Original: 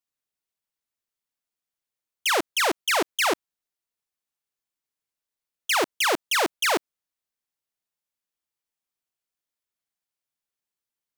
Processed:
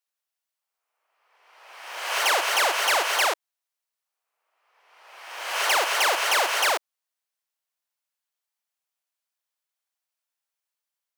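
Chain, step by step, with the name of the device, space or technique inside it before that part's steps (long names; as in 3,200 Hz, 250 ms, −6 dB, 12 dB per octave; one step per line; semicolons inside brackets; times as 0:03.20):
ghost voice (reversed playback; convolution reverb RT60 1.4 s, pre-delay 50 ms, DRR 1 dB; reversed playback; high-pass filter 550 Hz 24 dB per octave)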